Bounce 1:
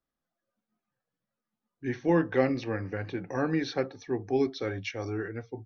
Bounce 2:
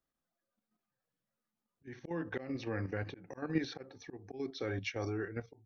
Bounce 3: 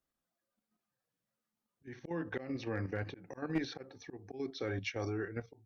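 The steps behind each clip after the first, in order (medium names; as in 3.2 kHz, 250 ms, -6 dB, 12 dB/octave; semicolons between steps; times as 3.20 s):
slow attack 282 ms; level held to a coarse grid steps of 9 dB
one-sided clip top -26 dBFS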